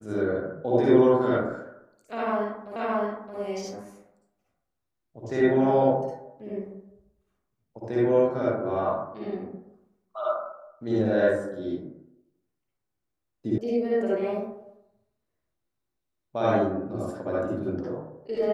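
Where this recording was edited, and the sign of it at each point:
0:02.76: the same again, the last 0.62 s
0:13.58: cut off before it has died away

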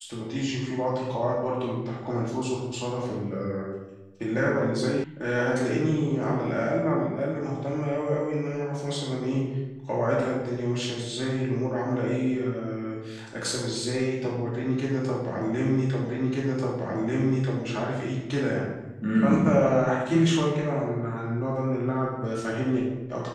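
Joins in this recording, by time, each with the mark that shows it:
0:05.04: cut off before it has died away
0:16.09: the same again, the last 1.54 s

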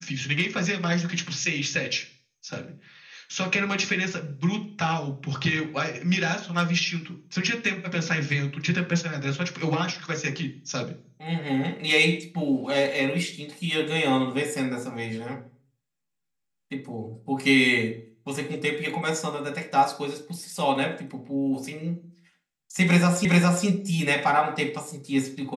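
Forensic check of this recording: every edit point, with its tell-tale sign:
0:23.25: the same again, the last 0.41 s

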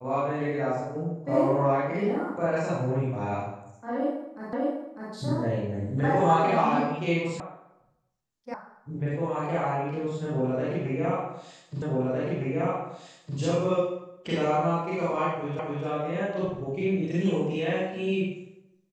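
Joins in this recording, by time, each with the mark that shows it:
0:04.53: the same again, the last 0.6 s
0:07.40: cut off before it has died away
0:08.54: cut off before it has died away
0:11.82: the same again, the last 1.56 s
0:15.59: the same again, the last 0.26 s

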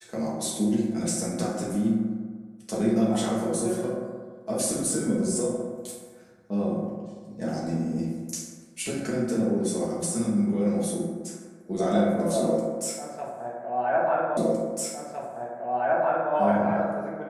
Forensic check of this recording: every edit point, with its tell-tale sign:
0:14.37: the same again, the last 1.96 s

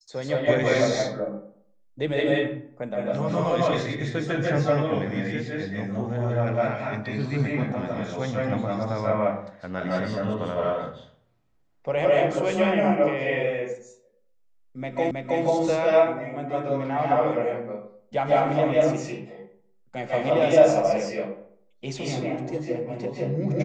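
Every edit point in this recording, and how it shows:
0:15.11: the same again, the last 0.32 s

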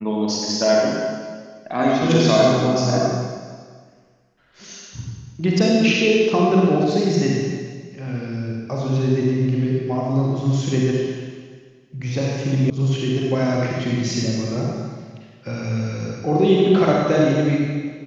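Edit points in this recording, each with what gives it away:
0:12.70: cut off before it has died away

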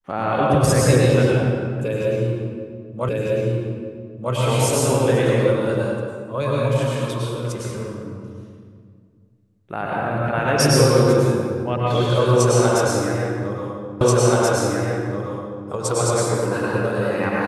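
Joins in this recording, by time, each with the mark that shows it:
0:03.09: the same again, the last 1.25 s
0:14.01: the same again, the last 1.68 s

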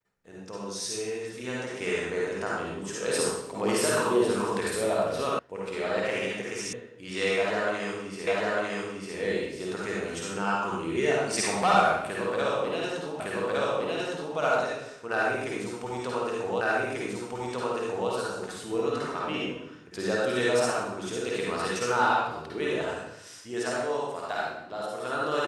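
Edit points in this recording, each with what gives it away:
0:05.39: cut off before it has died away
0:06.73: cut off before it has died away
0:08.27: the same again, the last 0.9 s
0:13.20: the same again, the last 1.16 s
0:16.61: the same again, the last 1.49 s

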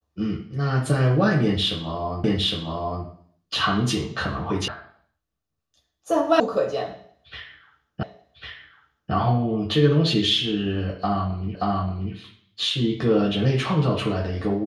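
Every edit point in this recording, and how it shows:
0:02.24: the same again, the last 0.81 s
0:04.68: cut off before it has died away
0:06.40: cut off before it has died away
0:08.03: the same again, the last 1.1 s
0:11.55: the same again, the last 0.58 s

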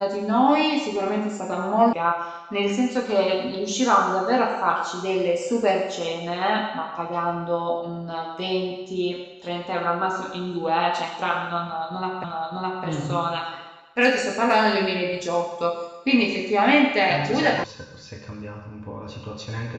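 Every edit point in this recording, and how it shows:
0:01.93: cut off before it has died away
0:12.24: the same again, the last 0.61 s
0:17.64: cut off before it has died away

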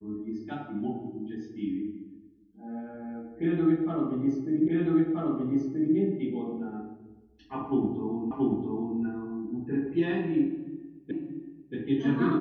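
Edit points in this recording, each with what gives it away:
0:04.68: the same again, the last 1.28 s
0:08.31: the same again, the last 0.68 s
0:11.11: the same again, the last 0.63 s

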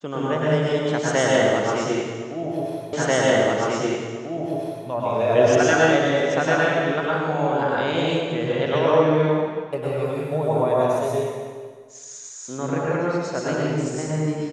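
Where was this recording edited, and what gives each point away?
0:02.93: the same again, the last 1.94 s

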